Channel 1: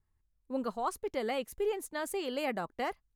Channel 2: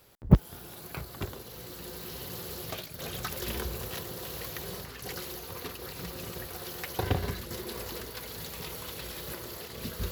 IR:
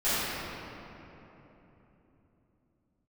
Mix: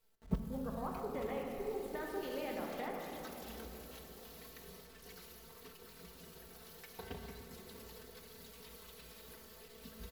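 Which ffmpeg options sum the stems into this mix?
-filter_complex "[0:a]afwtdn=0.00631,acompressor=threshold=-41dB:ratio=4,volume=-3dB,asplit=2[a][b];[b]volume=-11.5dB[c];[1:a]acrusher=bits=8:dc=4:mix=0:aa=0.000001,aecho=1:1:4.5:0.86,volume=-19dB,asplit=2[d][e];[e]volume=-19dB[f];[2:a]atrim=start_sample=2205[g];[c][f]amix=inputs=2:normalize=0[h];[h][g]afir=irnorm=-1:irlink=0[i];[a][d][i]amix=inputs=3:normalize=0"

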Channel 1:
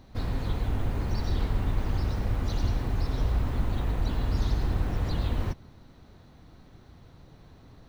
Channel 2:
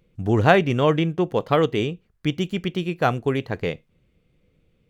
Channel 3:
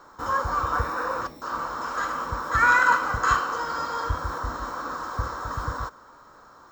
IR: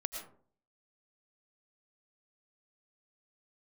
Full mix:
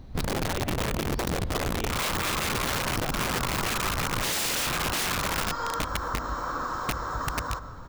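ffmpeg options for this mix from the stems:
-filter_complex "[0:a]lowshelf=f=410:g=6,acompressor=threshold=-21dB:ratio=12,volume=-1dB,asplit=2[a][b];[b]volume=-16.5dB[c];[1:a]alimiter=limit=-11dB:level=0:latency=1:release=206,volume=-12dB,asplit=2[d][e];[e]volume=-3.5dB[f];[2:a]adelay=1700,volume=-1dB,asplit=2[g][h];[h]volume=-8dB[i];[3:a]atrim=start_sample=2205[j];[c][f][i]amix=inputs=3:normalize=0[k];[k][j]afir=irnorm=-1:irlink=0[l];[a][d][g][l]amix=inputs=4:normalize=0,lowshelf=f=81:g=5,aeval=exprs='(mod(7.08*val(0)+1,2)-1)/7.08':c=same,acompressor=threshold=-26dB:ratio=6"

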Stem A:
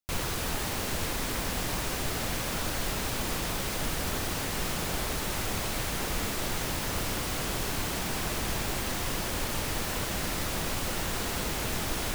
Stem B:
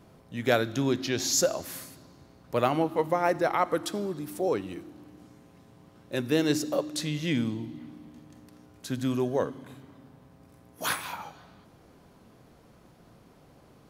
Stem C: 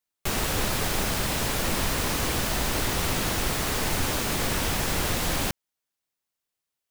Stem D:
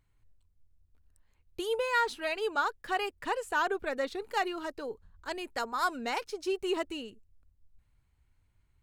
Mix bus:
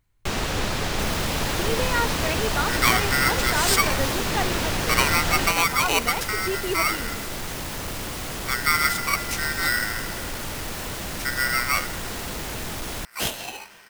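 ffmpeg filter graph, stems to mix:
-filter_complex "[0:a]asoftclip=type=tanh:threshold=-26.5dB,adelay=900,volume=2dB[a];[1:a]aeval=exprs='val(0)*sgn(sin(2*PI*1700*n/s))':c=same,adelay=2350,volume=3dB[b];[2:a]acrossover=split=6900[c][d];[d]acompressor=threshold=-43dB:ratio=4:attack=1:release=60[e];[c][e]amix=inputs=2:normalize=0,volume=1.5dB[f];[3:a]volume=2.5dB[g];[a][b][f][g]amix=inputs=4:normalize=0"

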